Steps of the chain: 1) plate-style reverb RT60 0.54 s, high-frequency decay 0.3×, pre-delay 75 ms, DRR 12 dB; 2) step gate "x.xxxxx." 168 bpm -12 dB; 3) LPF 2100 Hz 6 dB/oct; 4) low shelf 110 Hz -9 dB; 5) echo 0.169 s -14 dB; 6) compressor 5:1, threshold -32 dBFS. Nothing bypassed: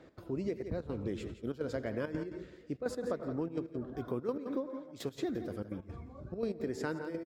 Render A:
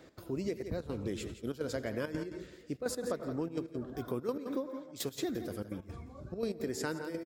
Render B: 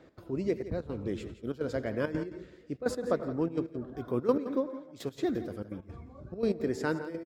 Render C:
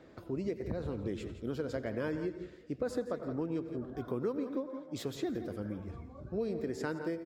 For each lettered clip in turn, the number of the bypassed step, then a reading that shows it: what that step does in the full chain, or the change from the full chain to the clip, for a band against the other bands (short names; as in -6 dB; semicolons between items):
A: 3, 8 kHz band +10.0 dB; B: 6, mean gain reduction 2.5 dB; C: 2, momentary loudness spread change -1 LU